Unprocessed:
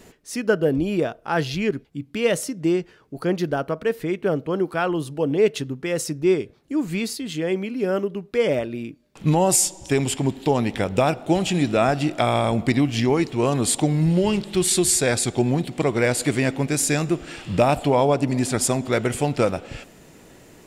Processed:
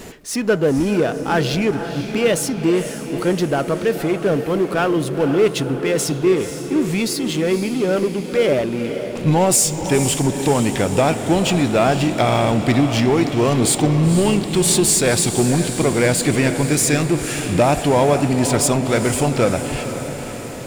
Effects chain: power-law waveshaper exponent 0.7; echo that smears into a reverb 500 ms, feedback 60%, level -9.5 dB

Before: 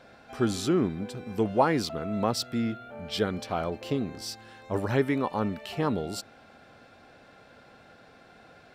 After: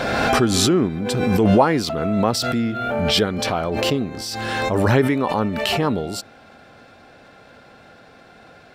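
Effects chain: swell ahead of each attack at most 23 dB/s; trim +6.5 dB

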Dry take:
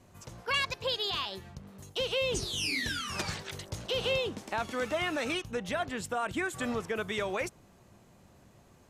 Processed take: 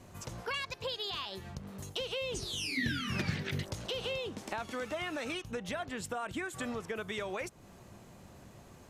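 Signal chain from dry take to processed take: compression 3:1, threshold -43 dBFS, peak gain reduction 13 dB; 2.77–3.63 s: ten-band graphic EQ 125 Hz +10 dB, 250 Hz +10 dB, 1 kHz -6 dB, 2 kHz +7 dB, 8 kHz -9 dB; trim +5 dB

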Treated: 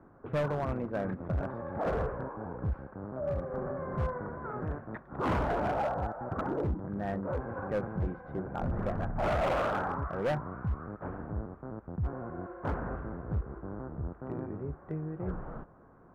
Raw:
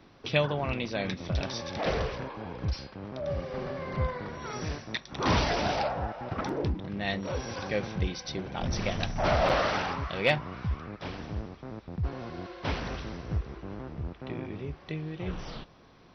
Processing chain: Chebyshev low-pass 1.5 kHz, order 4; overload inside the chain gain 26 dB

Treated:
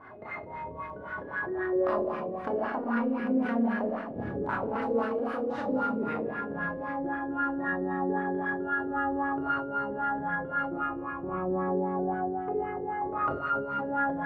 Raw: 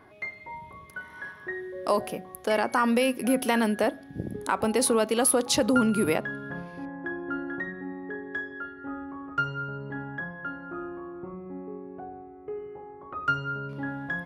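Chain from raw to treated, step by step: formants flattened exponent 0.6; compression 10:1, threshold -35 dBFS, peak gain reduction 17.5 dB; Schroeder reverb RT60 1.5 s, combs from 27 ms, DRR -4.5 dB; LFO low-pass sine 3.8 Hz 450–1600 Hz; decay stretcher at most 78 dB/s

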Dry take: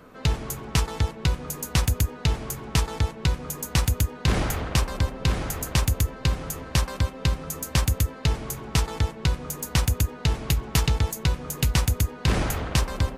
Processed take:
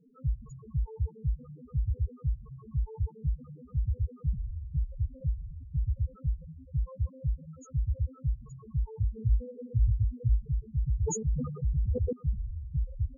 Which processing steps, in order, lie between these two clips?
9.01–10.42 s: rippled EQ curve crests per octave 0.94, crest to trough 17 dB; loudest bins only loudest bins 2; 11.03–12.13 s: decay stretcher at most 58 dB/s; trim -4 dB

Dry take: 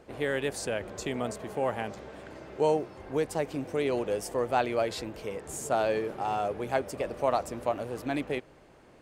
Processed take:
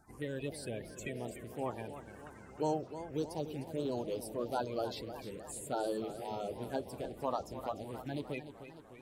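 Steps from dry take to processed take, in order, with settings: coarse spectral quantiser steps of 30 dB; treble shelf 6 kHz +8.5 dB; touch-sensitive phaser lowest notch 500 Hz, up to 2.1 kHz, full sweep at -24.5 dBFS; modulated delay 302 ms, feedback 60%, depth 152 cents, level -11.5 dB; trim -6.5 dB

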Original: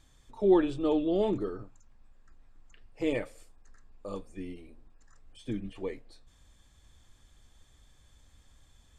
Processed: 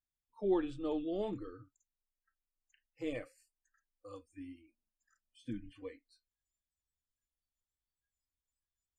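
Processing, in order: spectral noise reduction 29 dB; 4.33–5.84 s: small resonant body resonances 210/620/910/1500 Hz, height 10 dB; trim -9 dB

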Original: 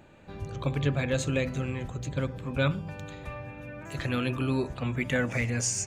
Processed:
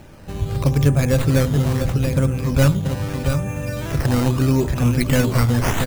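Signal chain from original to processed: tracing distortion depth 0.26 ms; delay 681 ms -8 dB; in parallel at +1.5 dB: compression, threshold -37 dBFS, peak gain reduction 16 dB; on the sum: decimation with a swept rate 9×, swing 100% 0.78 Hz; bass shelf 120 Hz +10 dB; level rider gain up to 4 dB; dynamic bell 2.2 kHz, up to -4 dB, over -35 dBFS, Q 0.78; trim +2 dB

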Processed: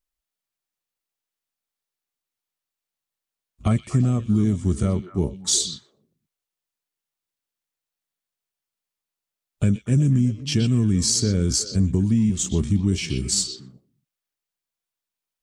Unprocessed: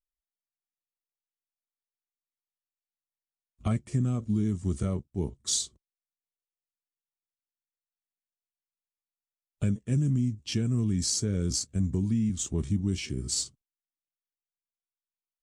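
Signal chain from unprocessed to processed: repeats whose band climbs or falls 122 ms, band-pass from 3.4 kHz, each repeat -1.4 oct, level -5.5 dB; trim +7.5 dB

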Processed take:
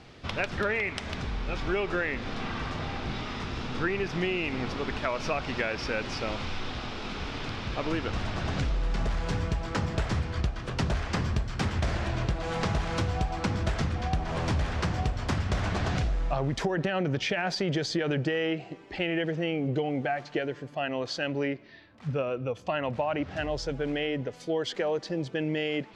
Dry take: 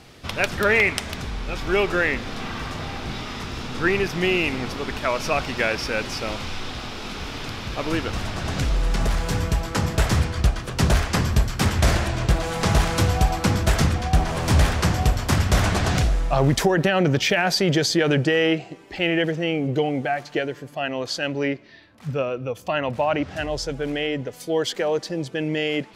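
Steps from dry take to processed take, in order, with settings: compression, threshold -22 dBFS, peak gain reduction 9.5 dB; distance through air 99 m; trim -2.5 dB

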